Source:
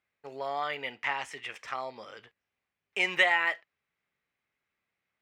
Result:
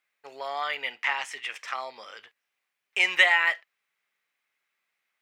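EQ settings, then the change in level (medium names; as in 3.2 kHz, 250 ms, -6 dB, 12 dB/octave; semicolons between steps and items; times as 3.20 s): high-pass 1.3 kHz 6 dB/octave; +6.5 dB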